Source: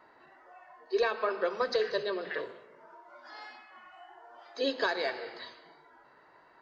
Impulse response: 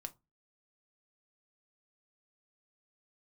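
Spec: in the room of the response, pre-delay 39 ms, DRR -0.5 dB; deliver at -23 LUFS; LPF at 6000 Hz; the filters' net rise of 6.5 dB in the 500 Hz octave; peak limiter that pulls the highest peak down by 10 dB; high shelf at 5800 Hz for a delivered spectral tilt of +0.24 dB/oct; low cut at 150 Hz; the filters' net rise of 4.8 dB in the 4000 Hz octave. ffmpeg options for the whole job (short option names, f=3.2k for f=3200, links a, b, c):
-filter_complex "[0:a]highpass=150,lowpass=6k,equalizer=f=500:t=o:g=7.5,equalizer=f=4k:t=o:g=7.5,highshelf=f=5.8k:g=-4.5,alimiter=limit=-20dB:level=0:latency=1,asplit=2[a][b];[1:a]atrim=start_sample=2205,adelay=39[c];[b][c]afir=irnorm=-1:irlink=0,volume=4.5dB[d];[a][d]amix=inputs=2:normalize=0,volume=4dB"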